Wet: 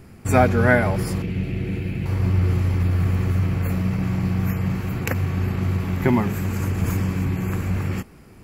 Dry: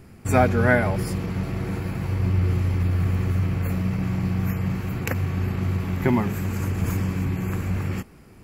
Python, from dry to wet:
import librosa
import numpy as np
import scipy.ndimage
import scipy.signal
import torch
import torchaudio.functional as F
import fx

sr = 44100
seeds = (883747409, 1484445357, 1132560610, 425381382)

y = fx.curve_eq(x, sr, hz=(380.0, 1100.0, 2600.0, 5300.0), db=(0, -15, 4, -9), at=(1.22, 2.06))
y = y * 10.0 ** (2.0 / 20.0)